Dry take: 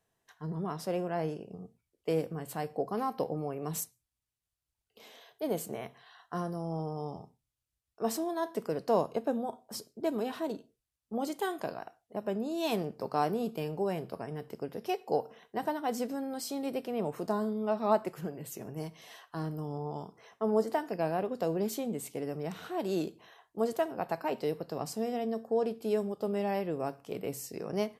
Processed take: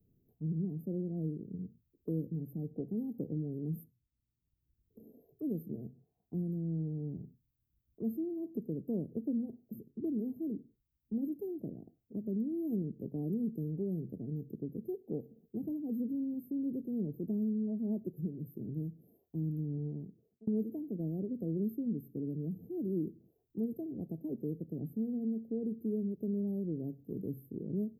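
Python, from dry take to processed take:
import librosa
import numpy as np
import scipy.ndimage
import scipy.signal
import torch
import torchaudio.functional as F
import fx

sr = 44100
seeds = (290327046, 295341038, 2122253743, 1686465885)

y = fx.edit(x, sr, fx.fade_out_span(start_s=19.86, length_s=0.61), tone=tone)
y = scipy.signal.sosfilt(scipy.signal.cheby2(4, 70, [1200.0, 6400.0], 'bandstop', fs=sr, output='sos'), y)
y = fx.band_squash(y, sr, depth_pct=40)
y = F.gain(torch.from_numpy(y), 2.5).numpy()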